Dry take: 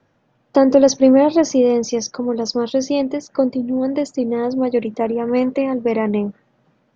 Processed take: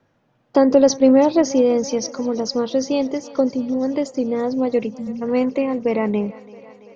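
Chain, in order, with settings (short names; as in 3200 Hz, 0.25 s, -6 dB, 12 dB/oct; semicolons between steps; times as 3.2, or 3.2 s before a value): spectral delete 4.91–5.22, 250–4700 Hz; thinning echo 0.335 s, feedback 78%, high-pass 250 Hz, level -19.5 dB; gain -1.5 dB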